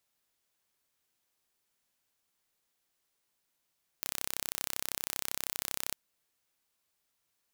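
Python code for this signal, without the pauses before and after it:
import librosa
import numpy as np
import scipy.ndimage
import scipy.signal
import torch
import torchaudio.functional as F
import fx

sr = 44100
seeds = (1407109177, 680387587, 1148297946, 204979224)

y = 10.0 ** (-6.5 / 20.0) * (np.mod(np.arange(round(1.91 * sr)), round(sr / 32.7)) == 0)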